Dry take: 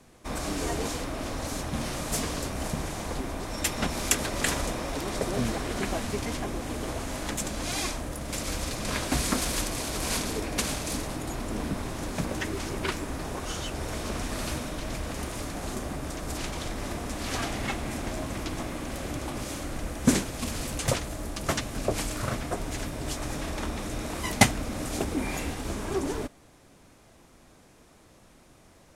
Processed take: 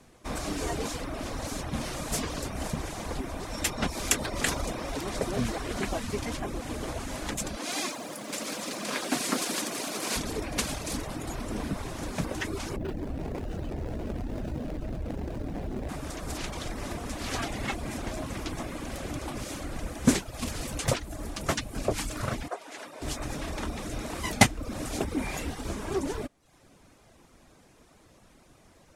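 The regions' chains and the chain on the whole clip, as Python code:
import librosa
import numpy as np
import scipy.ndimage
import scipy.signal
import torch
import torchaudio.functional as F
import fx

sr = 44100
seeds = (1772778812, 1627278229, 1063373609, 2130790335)

y = fx.chain(x, sr, fx.highpass(hz=190.0, slope=24),
    fx.echo_crushed(ms=85, feedback_pct=80, bits=8, wet_db=-9), at=(7.57, 10.16))
y = fx.chain(y, sr, fx.median_filter(points=41),
    fx.env_flatten(amount_pct=70), at=(12.76, 15.89))
y = fx.chain(y, sr, fx.delta_mod(bps=64000, step_db=-39.5),
    fx.highpass(hz=520.0, slope=12),
    fx.high_shelf(hz=3200.0, db=-8.5), at=(22.48, 23.02))
y = fx.dereverb_blind(y, sr, rt60_s=0.59)
y = fx.high_shelf(y, sr, hz=12000.0, db=-4.0)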